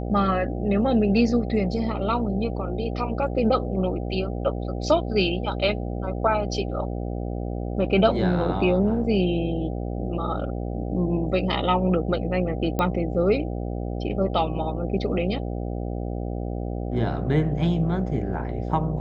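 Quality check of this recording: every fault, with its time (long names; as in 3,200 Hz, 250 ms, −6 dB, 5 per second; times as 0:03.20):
mains buzz 60 Hz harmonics 13 −29 dBFS
0:12.79: click −12 dBFS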